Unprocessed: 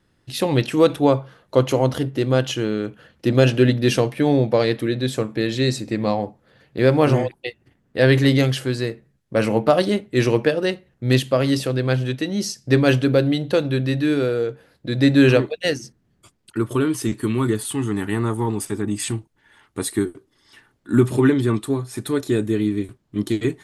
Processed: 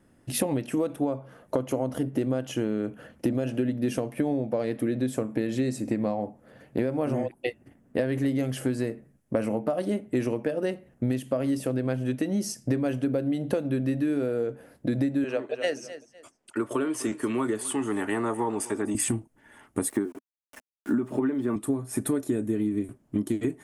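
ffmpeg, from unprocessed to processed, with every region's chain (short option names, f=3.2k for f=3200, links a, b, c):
-filter_complex "[0:a]asettb=1/sr,asplit=3[a][b][c];[a]atrim=end=15.244[d];[b]atrim=start=15.24:end=18.95,asetpts=PTS-STARTPTS,afade=t=in:d=0.004:c=qsin,afade=t=out:st=3.706:d=0.004:c=qsin,acrossover=split=380 8000:gain=0.158 1 0.158[e][f][g];[e][f][g]amix=inputs=3:normalize=0,aecho=1:1:251|502:0.0891|0.0241,atrim=end_sample=163611[h];[c]atrim=start=18.946[i];[d][h]acrossfade=d=0.004:c1=hsin:c2=qsin[j];[j][i]acrossfade=d=0.004:c1=qsin:c2=hsin,asettb=1/sr,asplit=3[k][l][m];[k]atrim=end=19.894[n];[l]atrim=start=19.89:end=21.56,asetpts=PTS-STARTPTS,afade=t=in:d=0.004:c=qsin,afade=t=out:st=1.666:d=0.004:c=qsin,highpass=160,lowpass=5.2k,equalizer=f=930:w=0.6:g=5,aeval=exprs='val(0)*gte(abs(val(0)),0.00794)':c=same[o];[m]atrim=start=21.556[p];[n][o]acrossfade=d=0.004:c1=hsin:c2=qsin[q];[q][p]acrossfade=d=0.004:c1=qsin:c2=hsin,equalizer=f=250:t=o:w=0.67:g=9,equalizer=f=630:t=o:w=0.67:g=7,equalizer=f=4k:t=o:w=0.67:g=-10,equalizer=f=10k:t=o:w=0.67:g=7,alimiter=limit=-3dB:level=0:latency=1:release=407,acompressor=threshold=-23dB:ratio=12"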